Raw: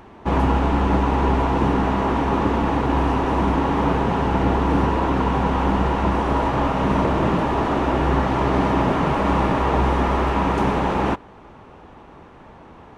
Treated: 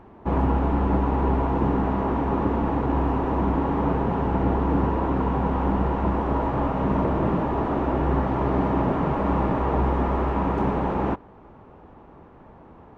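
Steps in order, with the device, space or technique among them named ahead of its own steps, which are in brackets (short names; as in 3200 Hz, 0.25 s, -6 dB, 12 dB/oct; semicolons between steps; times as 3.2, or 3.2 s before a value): through cloth (high shelf 2300 Hz -17 dB); gain -2.5 dB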